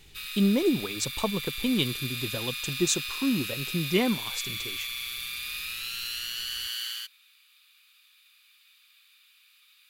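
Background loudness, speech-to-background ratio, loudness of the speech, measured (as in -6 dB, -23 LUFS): -32.5 LUFS, 3.5 dB, -29.0 LUFS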